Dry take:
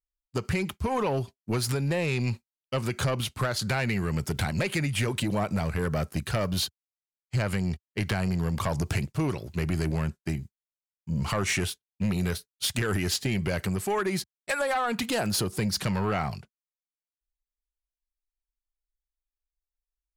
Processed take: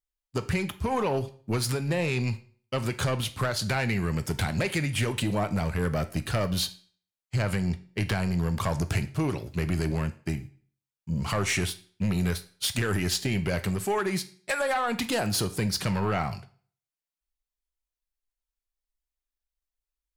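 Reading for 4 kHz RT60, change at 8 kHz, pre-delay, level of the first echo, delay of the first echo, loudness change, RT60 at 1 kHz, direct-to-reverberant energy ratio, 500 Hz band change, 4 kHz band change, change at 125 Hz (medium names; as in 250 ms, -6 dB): 0.45 s, +0.5 dB, 10 ms, no echo, no echo, 0.0 dB, 0.50 s, 11.0 dB, 0.0 dB, +0.5 dB, +0.5 dB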